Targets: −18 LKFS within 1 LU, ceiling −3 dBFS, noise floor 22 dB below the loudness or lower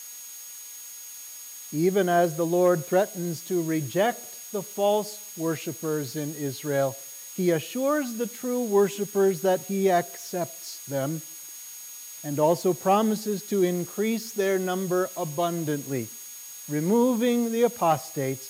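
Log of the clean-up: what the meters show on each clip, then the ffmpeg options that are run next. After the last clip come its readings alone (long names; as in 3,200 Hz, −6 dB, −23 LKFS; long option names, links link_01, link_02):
interfering tone 6,600 Hz; level of the tone −42 dBFS; background noise floor −42 dBFS; target noise floor −48 dBFS; integrated loudness −26.0 LKFS; sample peak −10.0 dBFS; target loudness −18.0 LKFS
→ -af "bandreject=frequency=6600:width=30"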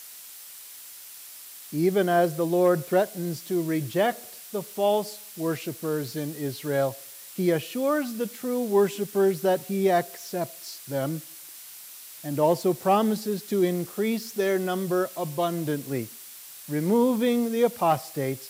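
interfering tone none found; background noise floor −44 dBFS; target noise floor −48 dBFS
→ -af "afftdn=noise_reduction=6:noise_floor=-44"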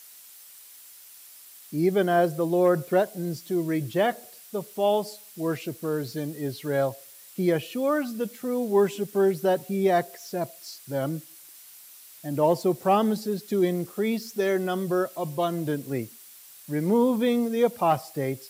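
background noise floor −49 dBFS; integrated loudness −26.0 LKFS; sample peak −10.0 dBFS; target loudness −18.0 LKFS
→ -af "volume=8dB,alimiter=limit=-3dB:level=0:latency=1"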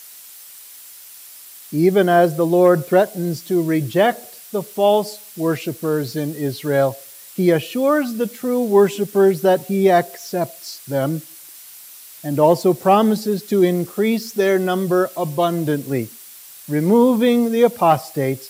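integrated loudness −18.0 LKFS; sample peak −3.0 dBFS; background noise floor −41 dBFS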